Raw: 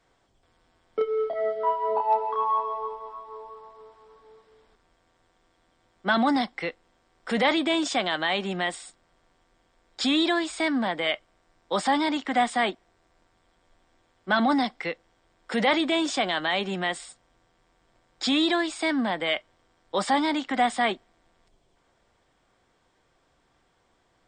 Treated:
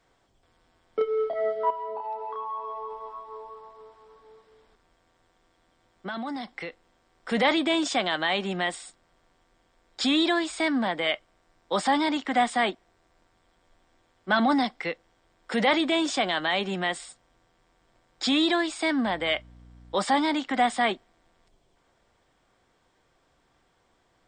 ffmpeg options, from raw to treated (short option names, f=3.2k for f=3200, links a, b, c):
-filter_complex "[0:a]asettb=1/sr,asplit=3[a][b][c];[a]atrim=end=1.704[d];[b]atrim=start=1.7:end=7.32,asetpts=PTS-STARTPTS,afade=t=in:d=0.004:c=qsin,afade=t=out:st=5.616:d=0.004:c=qsin,acompressor=threshold=-32dB:ratio=4:attack=3.2:release=140:knee=1:detection=peak[e];[c]atrim=start=7.316[f];[d][e]acrossfade=d=0.004:c1=hsin:c2=qsin[g];[g][f]acrossfade=d=0.004:c1=qsin:c2=hsin,asettb=1/sr,asplit=3[h][i][j];[h]atrim=end=19.054[k];[i]atrim=start=19.05:end=19.95,asetpts=PTS-STARTPTS,afade=t=in:d=0.004:c=qsin,afade=t=out:st=0.896:d=0.004:c=qsin,aeval=exprs='val(0)+0.00355*(sin(2*PI*60*n/s)+sin(2*PI*2*60*n/s)/2+sin(2*PI*3*60*n/s)/3+sin(2*PI*4*60*n/s)/4+sin(2*PI*5*60*n/s)/5)':c=same[l];[j]atrim=start=19.946[m];[k][l]acrossfade=d=0.004:c1=hsin:c2=qsin[n];[n][m]acrossfade=d=0.004:c1=qsin:c2=hsin"